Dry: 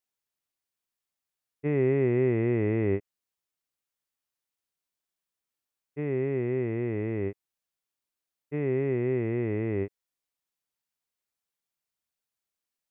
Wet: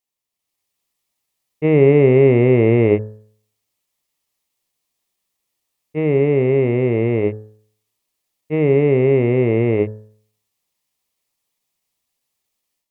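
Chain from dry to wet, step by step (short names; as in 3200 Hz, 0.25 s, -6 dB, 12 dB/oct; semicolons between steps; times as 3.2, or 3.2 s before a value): AGC gain up to 9 dB; dynamic EQ 540 Hz, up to +3 dB, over -35 dBFS, Q 3.9; pitch shift +1 st; bell 1500 Hz -13 dB 0.22 oct; de-hum 53.59 Hz, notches 33; gain +4 dB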